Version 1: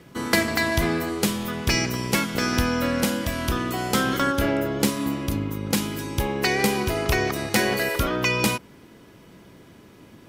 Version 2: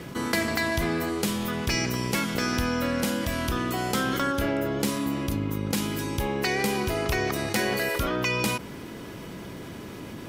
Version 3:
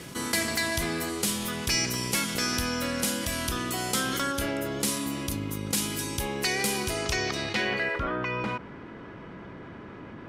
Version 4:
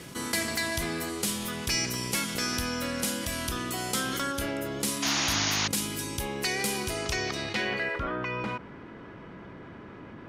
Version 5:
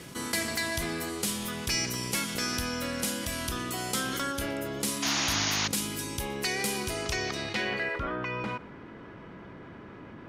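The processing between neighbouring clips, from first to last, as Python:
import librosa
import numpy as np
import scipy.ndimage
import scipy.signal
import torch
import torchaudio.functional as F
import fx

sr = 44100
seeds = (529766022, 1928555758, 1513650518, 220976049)

y1 = fx.env_flatten(x, sr, amount_pct=50)
y1 = y1 * 10.0 ** (-6.5 / 20.0)
y2 = fx.high_shelf(y1, sr, hz=2700.0, db=10.0)
y2 = np.clip(y2, -10.0 ** (-14.5 / 20.0), 10.0 ** (-14.5 / 20.0))
y2 = fx.filter_sweep_lowpass(y2, sr, from_hz=11000.0, to_hz=1500.0, start_s=6.83, end_s=8.04, q=1.3)
y2 = y2 * 10.0 ** (-4.5 / 20.0)
y3 = fx.spec_paint(y2, sr, seeds[0], shape='noise', start_s=5.02, length_s=0.66, low_hz=620.0, high_hz=6900.0, level_db=-26.0)
y3 = y3 * 10.0 ** (-2.0 / 20.0)
y4 = y3 + 10.0 ** (-22.0 / 20.0) * np.pad(y3, (int(120 * sr / 1000.0), 0))[:len(y3)]
y4 = y4 * 10.0 ** (-1.0 / 20.0)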